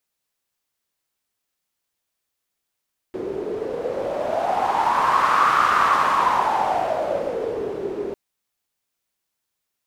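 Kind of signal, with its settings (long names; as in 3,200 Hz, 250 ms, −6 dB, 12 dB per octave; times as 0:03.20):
wind from filtered noise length 5.00 s, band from 390 Hz, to 1,200 Hz, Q 6.7, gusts 1, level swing 11 dB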